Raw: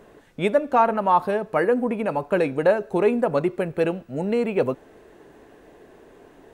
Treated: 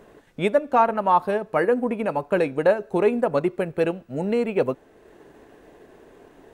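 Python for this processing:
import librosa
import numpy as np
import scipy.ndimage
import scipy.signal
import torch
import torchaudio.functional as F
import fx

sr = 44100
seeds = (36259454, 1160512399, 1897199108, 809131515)

y = fx.transient(x, sr, attack_db=0, sustain_db=-4)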